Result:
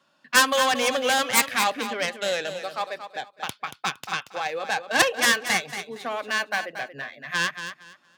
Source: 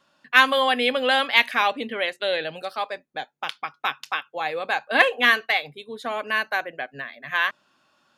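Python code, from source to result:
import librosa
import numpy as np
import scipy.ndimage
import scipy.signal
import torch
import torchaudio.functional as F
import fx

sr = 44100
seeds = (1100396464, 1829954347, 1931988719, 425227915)

p1 = fx.tracing_dist(x, sr, depth_ms=0.33)
p2 = scipy.signal.sosfilt(scipy.signal.butter(4, 98.0, 'highpass', fs=sr, output='sos'), p1)
p3 = p2 + fx.echo_feedback(p2, sr, ms=231, feedback_pct=22, wet_db=-10.0, dry=0)
y = p3 * 10.0 ** (-1.5 / 20.0)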